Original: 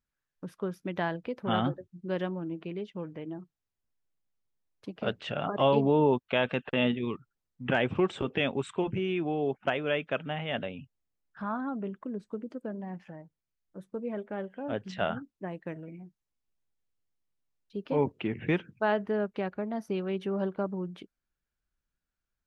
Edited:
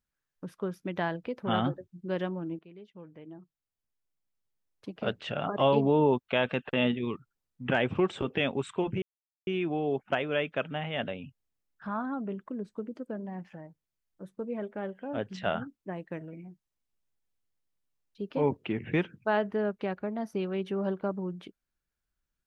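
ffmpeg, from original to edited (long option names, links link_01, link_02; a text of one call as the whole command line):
ffmpeg -i in.wav -filter_complex "[0:a]asplit=3[link_01][link_02][link_03];[link_01]atrim=end=2.59,asetpts=PTS-STARTPTS,afade=type=out:start_time=2.586:duration=0.004:curve=hsin:silence=0.16788[link_04];[link_02]atrim=start=2.59:end=9.02,asetpts=PTS-STARTPTS,afade=type=in:duration=2.35:silence=0.16788,afade=type=out:start_time=6.426:duration=0.004:curve=hsin,apad=pad_dur=0.45[link_05];[link_03]atrim=start=9.02,asetpts=PTS-STARTPTS,afade=type=in:duration=0.004:curve=hsin[link_06];[link_04][link_05][link_06]concat=n=3:v=0:a=1" out.wav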